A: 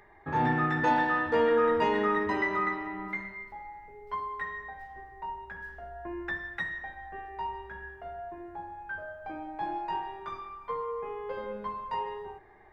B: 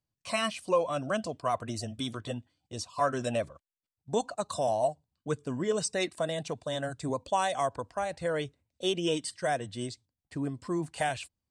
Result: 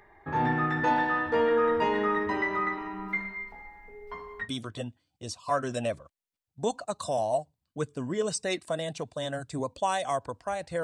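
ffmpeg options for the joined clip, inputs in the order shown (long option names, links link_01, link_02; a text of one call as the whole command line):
ffmpeg -i cue0.wav -i cue1.wav -filter_complex "[0:a]asettb=1/sr,asplit=3[link_01][link_02][link_03];[link_01]atrim=end=2.774[link_04];[link_02]atrim=start=2.77:end=4.49,asetpts=PTS-STARTPTS,afade=type=in:duration=0.004:curve=qsin,afade=type=out:start_time=1.716:duration=0.004:curve=qsin,aecho=1:1:4.3:0.76,atrim=end_sample=75852[link_05];[link_03]atrim=start=4.486[link_06];[link_04][link_05]acrossfade=duration=0.004:curve1=hsin:curve2=qsin[link_07];[link_07][link_06]acrossfade=duration=0.004:curve1=qsin:curve2=hsin,apad=whole_dur=10.83,atrim=end=10.83,atrim=end=4.49,asetpts=PTS-STARTPTS[link_08];[1:a]atrim=start=1.89:end=8.33,asetpts=PTS-STARTPTS[link_09];[link_08][link_09]acrossfade=duration=0.1:curve1=tri:curve2=tri" out.wav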